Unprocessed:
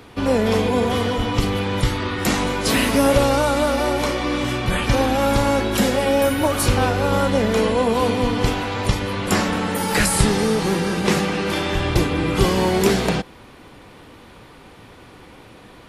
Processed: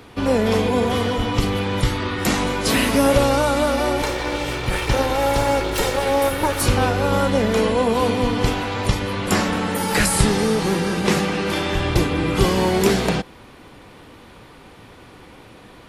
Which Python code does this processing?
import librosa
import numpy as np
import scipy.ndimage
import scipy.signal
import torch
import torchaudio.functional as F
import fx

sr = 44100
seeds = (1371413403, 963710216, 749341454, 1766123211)

y = fx.lower_of_two(x, sr, delay_ms=2.2, at=(4.02, 6.61))